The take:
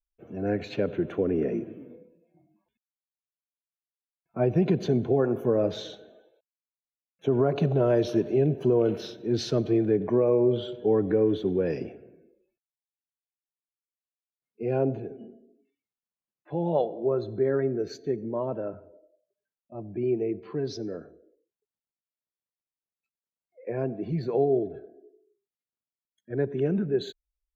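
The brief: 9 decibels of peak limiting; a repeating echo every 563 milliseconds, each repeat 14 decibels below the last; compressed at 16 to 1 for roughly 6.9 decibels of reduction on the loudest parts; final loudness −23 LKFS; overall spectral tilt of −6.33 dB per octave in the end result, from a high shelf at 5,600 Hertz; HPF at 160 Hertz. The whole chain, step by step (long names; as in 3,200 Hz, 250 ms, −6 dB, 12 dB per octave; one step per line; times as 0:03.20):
high-pass filter 160 Hz
high-shelf EQ 5,600 Hz −7.5 dB
downward compressor 16 to 1, threshold −25 dBFS
brickwall limiter −25.5 dBFS
repeating echo 563 ms, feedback 20%, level −14 dB
level +12.5 dB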